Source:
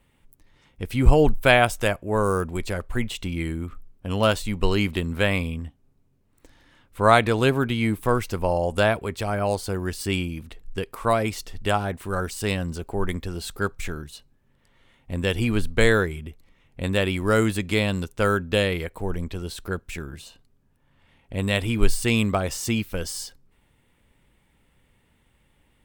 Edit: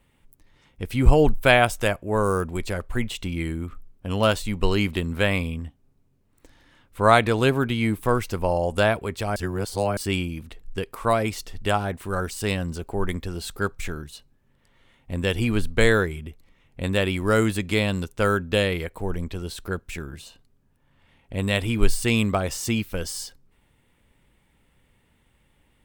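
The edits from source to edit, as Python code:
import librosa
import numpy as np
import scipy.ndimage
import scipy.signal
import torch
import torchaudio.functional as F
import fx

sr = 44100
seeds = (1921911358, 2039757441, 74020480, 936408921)

y = fx.edit(x, sr, fx.reverse_span(start_s=9.36, length_s=0.61), tone=tone)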